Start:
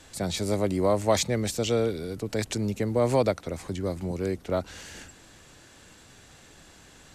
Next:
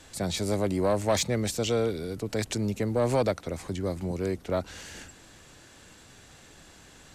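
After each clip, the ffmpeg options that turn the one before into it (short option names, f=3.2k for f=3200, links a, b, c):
-af "asoftclip=type=tanh:threshold=-16dB"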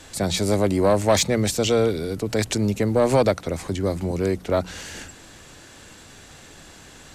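-af "bandreject=f=60:t=h:w=6,bandreject=f=120:t=h:w=6,bandreject=f=180:t=h:w=6,volume=7dB"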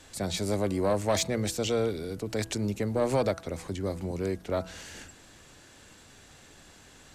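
-af "bandreject=f=164.2:t=h:w=4,bandreject=f=328.4:t=h:w=4,bandreject=f=492.6:t=h:w=4,bandreject=f=656.8:t=h:w=4,bandreject=f=821:t=h:w=4,bandreject=f=985.2:t=h:w=4,bandreject=f=1.1494k:t=h:w=4,bandreject=f=1.3136k:t=h:w=4,bandreject=f=1.4778k:t=h:w=4,bandreject=f=1.642k:t=h:w=4,volume=-8dB"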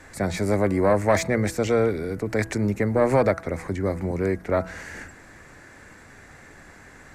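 -af "highshelf=f=2.5k:t=q:w=3:g=-7,volume=6.5dB"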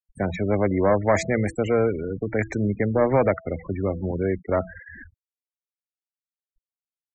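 -af "afftfilt=real='re*gte(hypot(re,im),0.0447)':imag='im*gte(hypot(re,im),0.0447)':win_size=1024:overlap=0.75"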